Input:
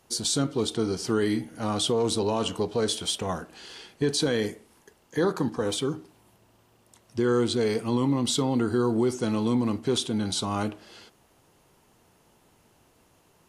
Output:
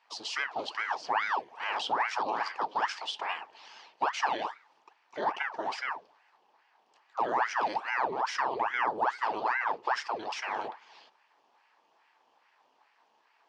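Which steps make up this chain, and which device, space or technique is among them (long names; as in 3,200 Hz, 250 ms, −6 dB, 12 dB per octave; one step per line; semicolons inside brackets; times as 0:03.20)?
voice changer toy (ring modulator whose carrier an LFO sweeps 970 Hz, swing 90%, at 2.4 Hz; loudspeaker in its box 560–4,600 Hz, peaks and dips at 560 Hz −5 dB, 880 Hz +7 dB, 1,400 Hz −7 dB, 2,100 Hz −5 dB, 3,800 Hz −6 dB)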